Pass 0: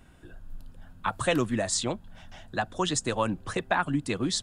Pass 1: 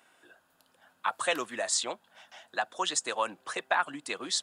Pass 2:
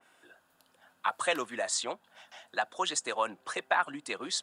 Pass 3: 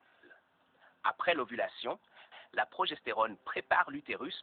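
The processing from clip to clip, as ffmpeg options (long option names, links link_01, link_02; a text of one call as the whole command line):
ffmpeg -i in.wav -af "highpass=620" out.wav
ffmpeg -i in.wav -af "adynamicequalizer=threshold=0.00562:dfrequency=2400:dqfactor=0.7:tfrequency=2400:tqfactor=0.7:attack=5:release=100:ratio=0.375:range=2:mode=cutabove:tftype=highshelf" out.wav
ffmpeg -i in.wav -ar 8000 -c:a libopencore_amrnb -b:a 10200 out.amr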